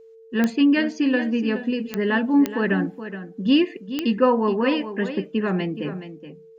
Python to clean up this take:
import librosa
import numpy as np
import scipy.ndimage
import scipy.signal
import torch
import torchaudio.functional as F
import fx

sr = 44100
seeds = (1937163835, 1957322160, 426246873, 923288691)

y = fx.fix_declick_ar(x, sr, threshold=10.0)
y = fx.notch(y, sr, hz=450.0, q=30.0)
y = fx.fix_echo_inverse(y, sr, delay_ms=422, level_db=-11.5)